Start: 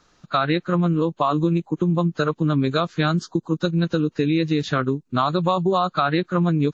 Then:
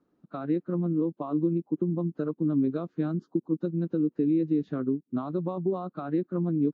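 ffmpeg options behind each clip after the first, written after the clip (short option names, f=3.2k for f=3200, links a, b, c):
-af "bandpass=f=280:t=q:w=2:csg=0,volume=-2dB"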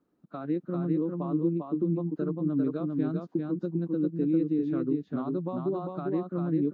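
-af "aecho=1:1:398:0.668,volume=-2.5dB"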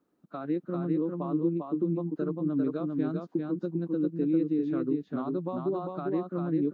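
-af "lowshelf=f=180:g=-7.5,volume=1.5dB"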